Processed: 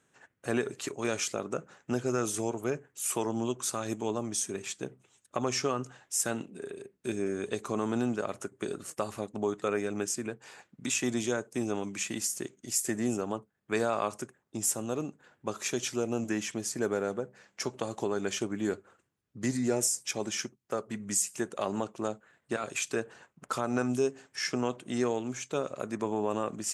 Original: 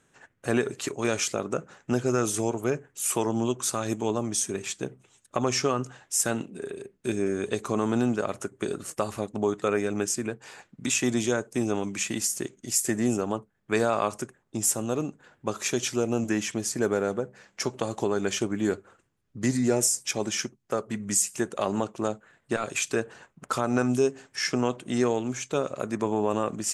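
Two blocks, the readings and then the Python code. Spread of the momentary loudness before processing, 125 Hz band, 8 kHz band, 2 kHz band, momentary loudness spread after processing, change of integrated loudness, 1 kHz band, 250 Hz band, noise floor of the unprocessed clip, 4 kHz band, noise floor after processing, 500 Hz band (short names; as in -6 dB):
9 LU, -6.5 dB, -4.5 dB, -4.5 dB, 9 LU, -5.0 dB, -4.5 dB, -5.0 dB, -70 dBFS, -4.5 dB, -76 dBFS, -4.5 dB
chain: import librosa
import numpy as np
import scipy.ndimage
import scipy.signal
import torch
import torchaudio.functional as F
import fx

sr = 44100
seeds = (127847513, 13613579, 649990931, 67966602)

y = scipy.signal.sosfilt(scipy.signal.butter(2, 41.0, 'highpass', fs=sr, output='sos'), x)
y = fx.low_shelf(y, sr, hz=95.0, db=-5.0)
y = y * librosa.db_to_amplitude(-4.5)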